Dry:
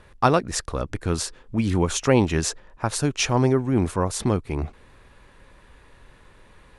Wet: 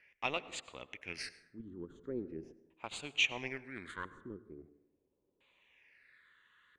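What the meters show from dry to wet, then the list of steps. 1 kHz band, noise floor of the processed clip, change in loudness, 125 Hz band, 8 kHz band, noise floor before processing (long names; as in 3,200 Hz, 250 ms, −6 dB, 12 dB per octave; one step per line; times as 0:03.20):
−20.0 dB, −81 dBFS, −16.5 dB, −30.5 dB, −22.0 dB, −53 dBFS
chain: first difference
in parallel at −6 dB: bit-depth reduction 6 bits, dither none
on the sum: auto-filter low-pass square 0.37 Hz 370–2,200 Hz
all-pass phaser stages 8, 0.42 Hz, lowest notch 690–1,700 Hz
dense smooth reverb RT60 0.89 s, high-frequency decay 0.45×, pre-delay 85 ms, DRR 15.5 dB
level +1 dB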